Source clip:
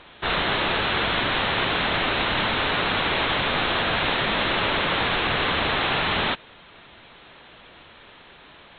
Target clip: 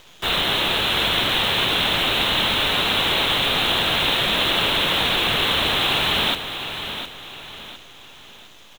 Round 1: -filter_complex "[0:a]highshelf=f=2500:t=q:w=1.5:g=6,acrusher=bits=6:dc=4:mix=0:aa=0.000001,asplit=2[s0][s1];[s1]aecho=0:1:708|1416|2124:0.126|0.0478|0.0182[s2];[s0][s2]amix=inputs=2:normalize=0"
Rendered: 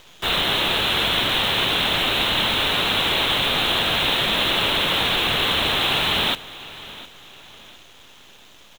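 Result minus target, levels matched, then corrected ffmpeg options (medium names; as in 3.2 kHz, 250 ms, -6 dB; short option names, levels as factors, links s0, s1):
echo-to-direct -8.5 dB
-filter_complex "[0:a]highshelf=f=2500:t=q:w=1.5:g=6,acrusher=bits=6:dc=4:mix=0:aa=0.000001,asplit=2[s0][s1];[s1]aecho=0:1:708|1416|2124|2832:0.335|0.127|0.0484|0.0184[s2];[s0][s2]amix=inputs=2:normalize=0"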